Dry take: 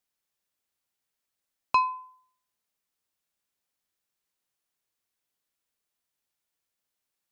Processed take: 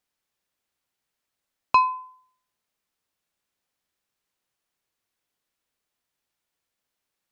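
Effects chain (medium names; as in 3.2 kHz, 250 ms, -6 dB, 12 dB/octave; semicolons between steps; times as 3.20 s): treble shelf 5.5 kHz -6.5 dB; trim +5 dB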